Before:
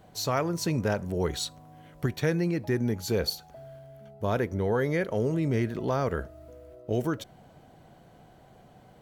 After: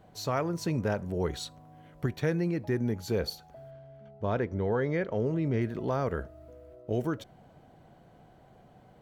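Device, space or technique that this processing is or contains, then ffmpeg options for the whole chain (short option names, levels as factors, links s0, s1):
behind a face mask: -filter_complex "[0:a]highshelf=f=3400:g=-7,asplit=3[s0][s1][s2];[s0]afade=t=out:st=3.7:d=0.02[s3];[s1]lowpass=5200,afade=t=in:st=3.7:d=0.02,afade=t=out:st=5.6:d=0.02[s4];[s2]afade=t=in:st=5.6:d=0.02[s5];[s3][s4][s5]amix=inputs=3:normalize=0,volume=0.794"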